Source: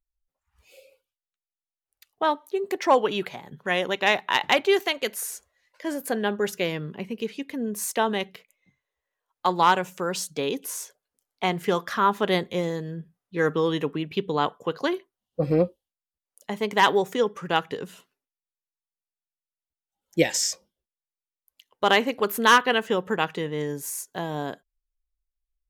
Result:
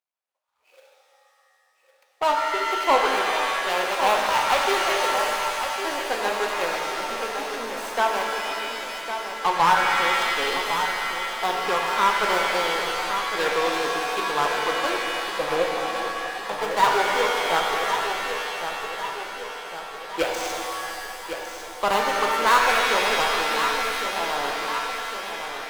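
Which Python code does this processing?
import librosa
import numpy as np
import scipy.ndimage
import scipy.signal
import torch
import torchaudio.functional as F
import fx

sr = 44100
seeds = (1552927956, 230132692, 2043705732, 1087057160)

y = scipy.ndimage.median_filter(x, 25, mode='constant')
y = scipy.signal.sosfilt(scipy.signal.butter(2, 820.0, 'highpass', fs=sr, output='sos'), y)
y = fx.tube_stage(y, sr, drive_db=19.0, bias=0.3)
y = fx.echo_feedback(y, sr, ms=1106, feedback_pct=57, wet_db=-8.5)
y = fx.rev_shimmer(y, sr, seeds[0], rt60_s=2.5, semitones=7, shimmer_db=-2, drr_db=1.5)
y = y * 10.0 ** (8.0 / 20.0)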